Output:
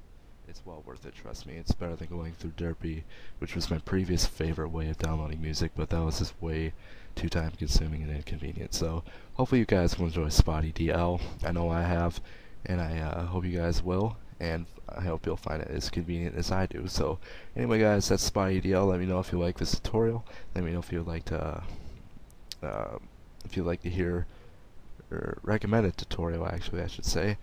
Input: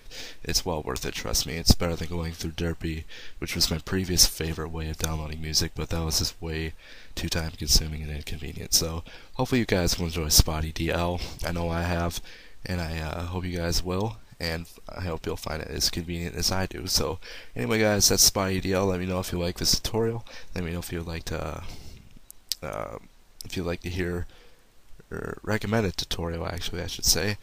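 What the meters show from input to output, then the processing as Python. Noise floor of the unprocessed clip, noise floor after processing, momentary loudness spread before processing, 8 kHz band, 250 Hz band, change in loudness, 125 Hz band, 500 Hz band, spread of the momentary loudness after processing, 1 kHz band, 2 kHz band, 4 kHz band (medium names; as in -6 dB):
-51 dBFS, -51 dBFS, 16 LU, -14.0 dB, -0.5 dB, -4.5 dB, -0.5 dB, -1.0 dB, 15 LU, -2.0 dB, -5.0 dB, -12.0 dB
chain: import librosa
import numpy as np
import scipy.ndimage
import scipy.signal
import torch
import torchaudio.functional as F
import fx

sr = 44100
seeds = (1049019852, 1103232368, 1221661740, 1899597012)

y = fx.fade_in_head(x, sr, length_s=4.41)
y = fx.lowpass(y, sr, hz=1300.0, slope=6)
y = fx.dmg_noise_colour(y, sr, seeds[0], colour='brown', level_db=-50.0)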